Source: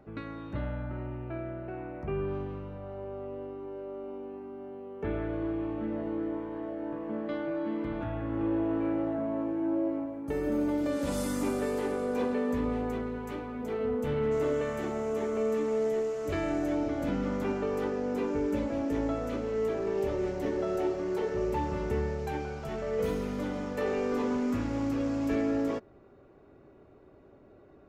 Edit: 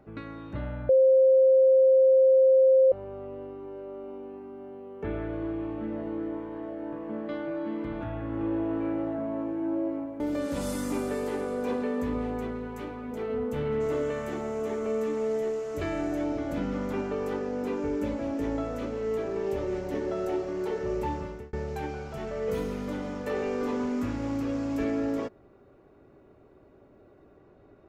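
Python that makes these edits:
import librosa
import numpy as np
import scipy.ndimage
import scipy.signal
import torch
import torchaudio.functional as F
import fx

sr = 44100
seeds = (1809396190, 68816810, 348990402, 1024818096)

y = fx.edit(x, sr, fx.bleep(start_s=0.89, length_s=2.03, hz=527.0, db=-15.5),
    fx.cut(start_s=10.2, length_s=0.51),
    fx.fade_out_span(start_s=21.62, length_s=0.42), tone=tone)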